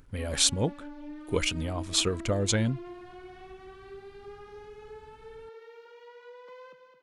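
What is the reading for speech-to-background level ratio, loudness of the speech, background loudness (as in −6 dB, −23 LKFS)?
17.5 dB, −28.0 LKFS, −45.5 LKFS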